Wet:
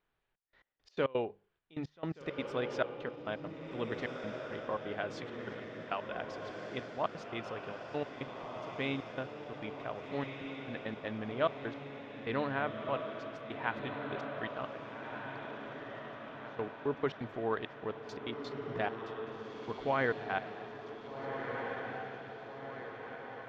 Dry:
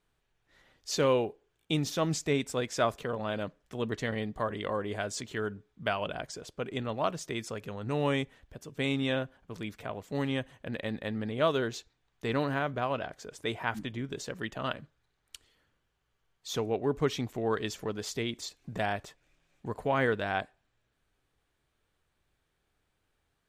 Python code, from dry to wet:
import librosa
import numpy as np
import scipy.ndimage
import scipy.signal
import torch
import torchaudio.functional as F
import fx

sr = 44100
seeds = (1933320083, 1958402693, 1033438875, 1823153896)

y = fx.low_shelf(x, sr, hz=370.0, db=-8.0)
y = fx.hum_notches(y, sr, base_hz=50, count=4)
y = fx.step_gate(y, sr, bpm=170, pattern='xxxx..x..x.x.x', floor_db=-24.0, edge_ms=4.5)
y = fx.air_absorb(y, sr, metres=280.0)
y = fx.echo_diffused(y, sr, ms=1595, feedback_pct=58, wet_db=-5)